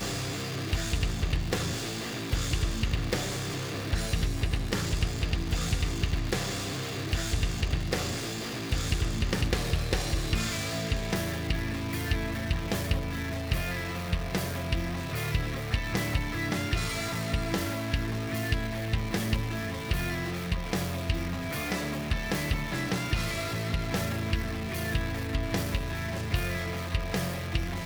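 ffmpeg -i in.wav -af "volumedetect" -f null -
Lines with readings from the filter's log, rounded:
mean_volume: -29.8 dB
max_volume: -11.9 dB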